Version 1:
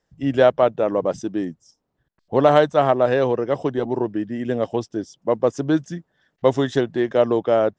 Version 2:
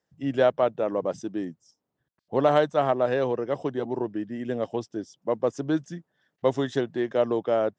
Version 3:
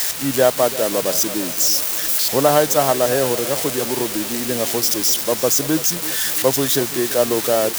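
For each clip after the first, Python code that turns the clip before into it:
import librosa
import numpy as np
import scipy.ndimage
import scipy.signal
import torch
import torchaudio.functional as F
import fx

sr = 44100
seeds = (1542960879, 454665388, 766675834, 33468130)

y1 = scipy.signal.sosfilt(scipy.signal.butter(2, 99.0, 'highpass', fs=sr, output='sos'), x)
y1 = y1 * librosa.db_to_amplitude(-6.0)
y2 = y1 + 0.5 * 10.0 ** (-15.5 / 20.0) * np.diff(np.sign(y1), prepend=np.sign(y1[:1]))
y2 = fx.echo_feedback(y2, sr, ms=337, feedback_pct=58, wet_db=-15.5)
y2 = fx.quant_dither(y2, sr, seeds[0], bits=6, dither='triangular')
y2 = y2 * librosa.db_to_amplitude(5.5)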